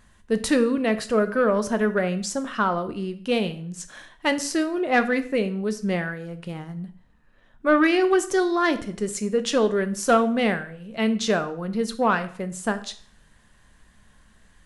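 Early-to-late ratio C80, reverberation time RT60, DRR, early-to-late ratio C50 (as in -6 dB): 18.0 dB, 0.50 s, 10.0 dB, 14.5 dB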